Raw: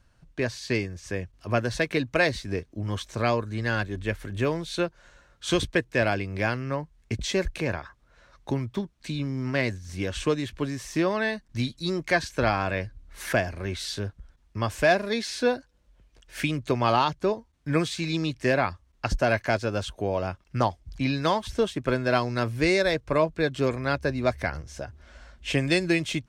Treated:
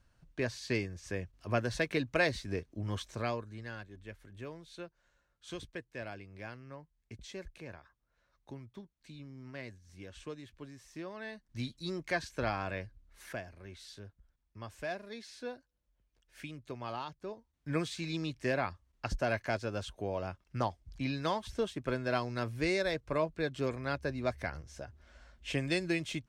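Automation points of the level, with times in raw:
0:03.01 −6.5 dB
0:03.82 −19 dB
0:11.13 −19 dB
0:11.64 −10 dB
0:12.75 −10 dB
0:13.44 −18 dB
0:17.26 −18 dB
0:17.70 −9 dB

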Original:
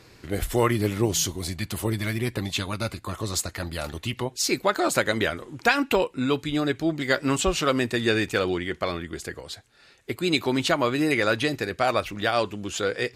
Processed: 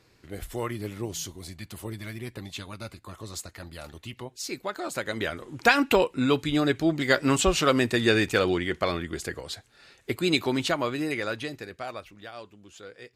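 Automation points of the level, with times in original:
0:04.91 −10 dB
0:05.66 +1 dB
0:10.12 +1 dB
0:11.73 −11.5 dB
0:12.30 −18.5 dB

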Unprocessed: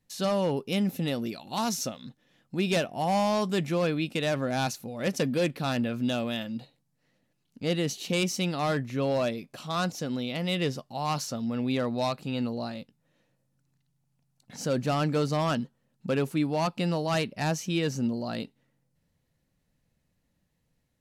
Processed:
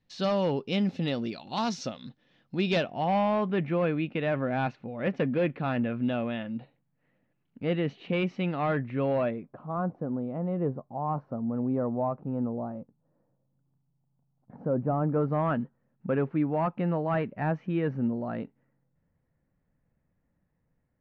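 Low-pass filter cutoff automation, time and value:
low-pass filter 24 dB per octave
0:02.67 4,800 Hz
0:03.38 2,500 Hz
0:09.20 2,500 Hz
0:09.63 1,100 Hz
0:15.00 1,100 Hz
0:15.46 1,900 Hz

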